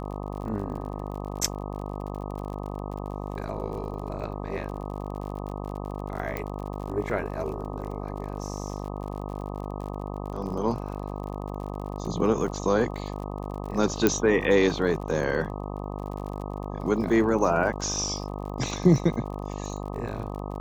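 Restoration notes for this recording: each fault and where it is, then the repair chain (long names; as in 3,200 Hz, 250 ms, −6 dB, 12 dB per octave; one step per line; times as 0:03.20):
mains buzz 50 Hz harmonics 25 −34 dBFS
surface crackle 42 per second −36 dBFS
0:06.37: click −17 dBFS
0:14.07: click −6 dBFS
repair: click removal
hum removal 50 Hz, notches 25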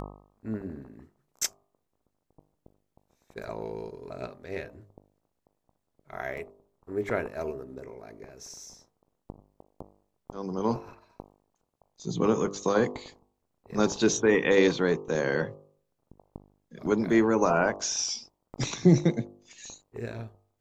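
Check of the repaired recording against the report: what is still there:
0:06.37: click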